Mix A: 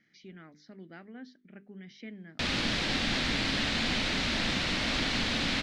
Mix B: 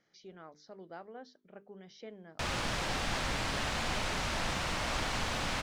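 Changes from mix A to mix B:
speech: add graphic EQ 125/500/1000/2000/4000 Hz -4/+8/+5/-7/+9 dB; master: add ten-band graphic EQ 250 Hz -11 dB, 1 kHz +5 dB, 2 kHz -5 dB, 4 kHz -10 dB, 16 kHz +12 dB

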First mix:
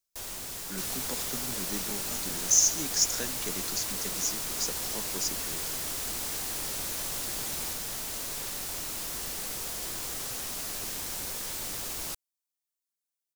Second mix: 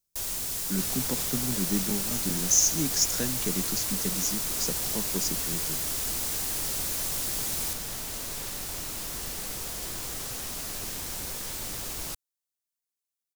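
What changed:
speech: add peaking EQ 160 Hz +9 dB 2.6 oct; first sound: add treble shelf 4 kHz +8 dB; master: add bass shelf 210 Hz +6 dB

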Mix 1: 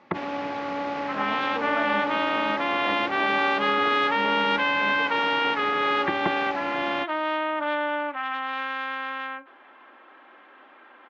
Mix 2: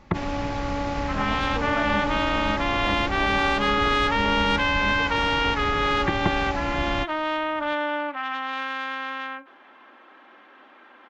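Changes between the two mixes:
first sound: add bass shelf 77 Hz +11 dB; master: remove band-pass 260–3500 Hz

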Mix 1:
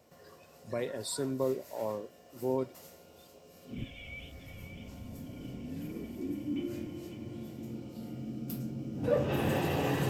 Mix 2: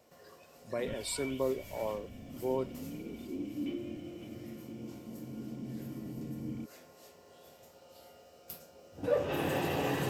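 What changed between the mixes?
first sound: entry -2.90 s; master: add peaking EQ 100 Hz -5.5 dB 2.3 oct

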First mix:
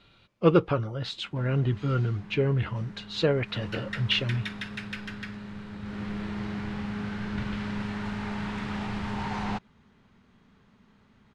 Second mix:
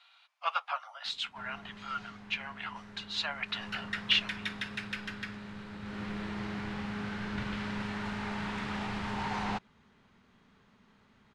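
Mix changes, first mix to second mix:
speech: add steep high-pass 680 Hz 72 dB/octave; master: add bass shelf 340 Hz -6.5 dB

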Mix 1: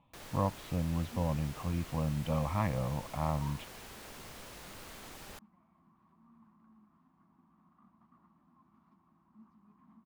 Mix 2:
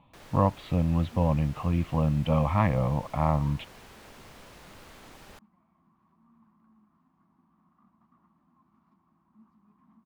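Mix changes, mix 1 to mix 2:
speech +8.0 dB; first sound: add treble shelf 5.5 kHz -7.5 dB

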